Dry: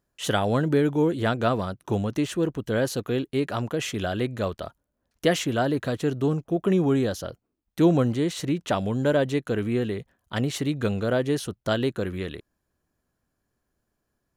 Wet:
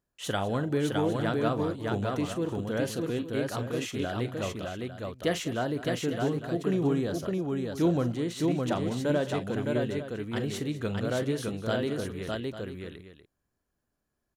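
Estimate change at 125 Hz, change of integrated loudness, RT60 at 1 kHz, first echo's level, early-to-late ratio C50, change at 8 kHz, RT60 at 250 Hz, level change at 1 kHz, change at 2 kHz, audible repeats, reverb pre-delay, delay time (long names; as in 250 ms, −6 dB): −4.5 dB, −5.0 dB, no reverb audible, −13.0 dB, no reverb audible, −4.5 dB, no reverb audible, −4.5 dB, −4.5 dB, 4, no reverb audible, 41 ms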